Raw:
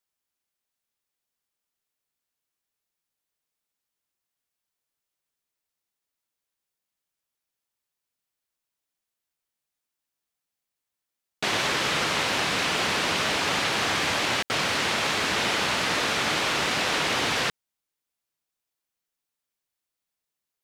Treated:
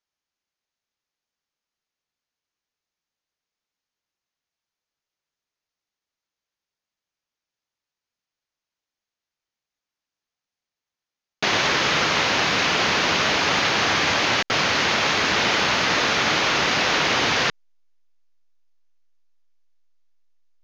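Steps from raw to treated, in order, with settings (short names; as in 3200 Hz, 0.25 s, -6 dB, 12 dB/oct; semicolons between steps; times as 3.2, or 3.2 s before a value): Chebyshev low-pass 6600 Hz, order 6; in parallel at -5 dB: backlash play -40.5 dBFS; on the sum: gain +1.5 dB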